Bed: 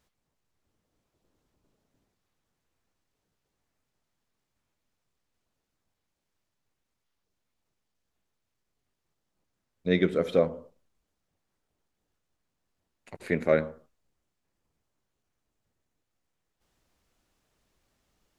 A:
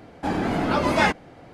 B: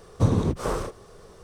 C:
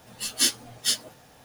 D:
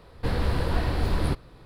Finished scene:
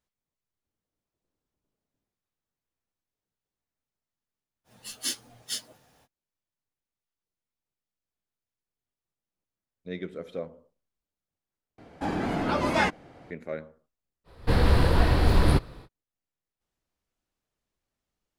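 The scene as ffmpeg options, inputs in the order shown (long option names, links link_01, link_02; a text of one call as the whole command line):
ffmpeg -i bed.wav -i cue0.wav -i cue1.wav -i cue2.wav -i cue3.wav -filter_complex "[0:a]volume=-12dB[link_01];[4:a]dynaudnorm=framelen=140:gausssize=3:maxgain=8dB[link_02];[link_01]asplit=2[link_03][link_04];[link_03]atrim=end=11.784[link_05];[1:a]atrim=end=1.53,asetpts=PTS-STARTPTS,volume=-4.5dB[link_06];[link_04]atrim=start=13.306[link_07];[3:a]atrim=end=1.44,asetpts=PTS-STARTPTS,volume=-9dB,afade=type=in:duration=0.05,afade=type=out:start_time=1.39:duration=0.05,adelay=4640[link_08];[link_02]atrim=end=1.65,asetpts=PTS-STARTPTS,volume=-3dB,afade=type=in:duration=0.05,afade=type=out:start_time=1.6:duration=0.05,adelay=14240[link_09];[link_05][link_06]acrossfade=duration=0.004:curve1=hsin:curve2=hsin[link_10];[link_10][link_07]acrossfade=duration=0.004:curve1=hsin:curve2=hsin[link_11];[link_11][link_08][link_09]amix=inputs=3:normalize=0" out.wav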